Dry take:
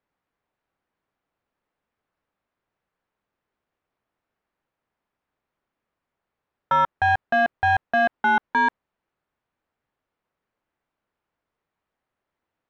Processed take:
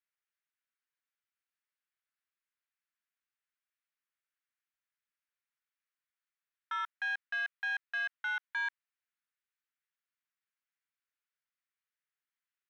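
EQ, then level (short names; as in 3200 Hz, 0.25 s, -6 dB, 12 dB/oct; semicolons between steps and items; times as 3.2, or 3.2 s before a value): HPF 1500 Hz 24 dB/oct; -8.0 dB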